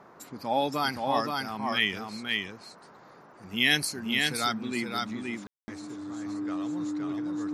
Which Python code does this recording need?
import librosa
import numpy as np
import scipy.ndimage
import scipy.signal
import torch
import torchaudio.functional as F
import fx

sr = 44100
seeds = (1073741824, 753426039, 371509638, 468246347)

y = fx.notch(x, sr, hz=300.0, q=30.0)
y = fx.fix_ambience(y, sr, seeds[0], print_start_s=2.88, print_end_s=3.38, start_s=5.47, end_s=5.68)
y = fx.noise_reduce(y, sr, print_start_s=2.88, print_end_s=3.38, reduce_db=23.0)
y = fx.fix_echo_inverse(y, sr, delay_ms=521, level_db=-3.5)